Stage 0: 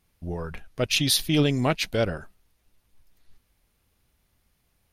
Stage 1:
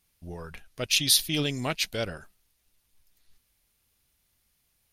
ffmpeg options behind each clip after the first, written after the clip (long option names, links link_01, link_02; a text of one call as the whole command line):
ffmpeg -i in.wav -af "highshelf=frequency=2200:gain=11.5,volume=-8dB" out.wav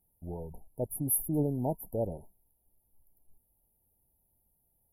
ffmpeg -i in.wav -af "afftfilt=real='re*(1-between(b*sr/4096,950,10000))':imag='im*(1-between(b*sr/4096,950,10000))':win_size=4096:overlap=0.75" out.wav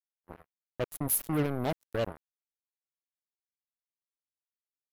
ffmpeg -i in.wav -af "acrusher=bits=4:mix=0:aa=0.5" out.wav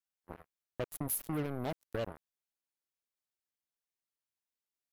ffmpeg -i in.wav -af "acompressor=threshold=-35dB:ratio=2.5" out.wav